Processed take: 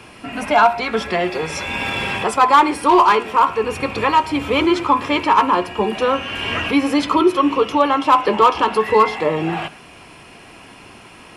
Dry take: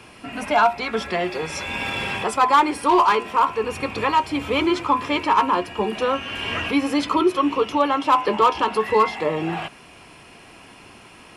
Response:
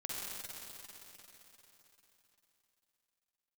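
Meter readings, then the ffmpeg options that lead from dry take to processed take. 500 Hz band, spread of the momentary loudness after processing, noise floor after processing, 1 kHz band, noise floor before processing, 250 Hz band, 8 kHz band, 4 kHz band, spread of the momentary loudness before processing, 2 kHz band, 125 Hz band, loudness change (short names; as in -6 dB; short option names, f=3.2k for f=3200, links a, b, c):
+4.0 dB, 9 LU, -42 dBFS, +4.0 dB, -46 dBFS, +4.0 dB, +3.0 dB, +3.5 dB, 9 LU, +4.0 dB, +4.0 dB, +4.0 dB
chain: -filter_complex "[0:a]asplit=2[a][b];[1:a]atrim=start_sample=2205,afade=t=out:st=0.18:d=0.01,atrim=end_sample=8379,lowpass=4.1k[c];[b][c]afir=irnorm=-1:irlink=0,volume=-12.5dB[d];[a][d]amix=inputs=2:normalize=0,volume=3dB"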